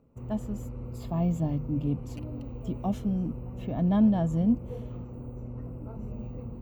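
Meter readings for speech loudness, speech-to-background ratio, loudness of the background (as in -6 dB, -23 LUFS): -29.0 LUFS, 11.0 dB, -40.0 LUFS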